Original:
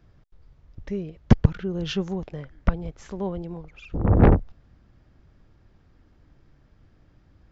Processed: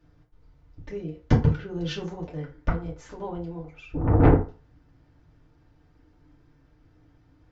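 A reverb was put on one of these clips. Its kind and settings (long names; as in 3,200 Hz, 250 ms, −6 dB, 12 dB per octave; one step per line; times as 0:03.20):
feedback delay network reverb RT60 0.35 s, low-frequency decay 0.85×, high-frequency decay 0.65×, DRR −5 dB
level −7 dB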